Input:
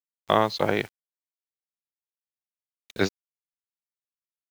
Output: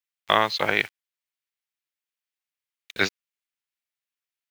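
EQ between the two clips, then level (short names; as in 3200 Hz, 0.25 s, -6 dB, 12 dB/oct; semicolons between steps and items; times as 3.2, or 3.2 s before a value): bell 2300 Hz +14.5 dB 2.4 oct; high shelf 8100 Hz +8.5 dB; -6.0 dB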